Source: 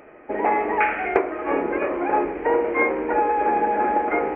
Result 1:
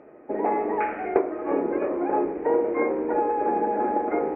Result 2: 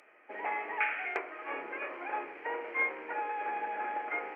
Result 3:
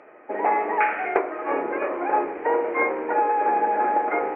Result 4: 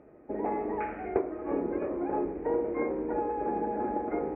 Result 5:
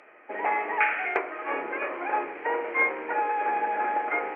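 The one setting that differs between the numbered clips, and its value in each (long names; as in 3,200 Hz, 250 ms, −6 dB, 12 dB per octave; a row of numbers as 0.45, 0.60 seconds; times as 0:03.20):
resonant band-pass, frequency: 280, 7,600, 1,000, 100, 2,800 Hertz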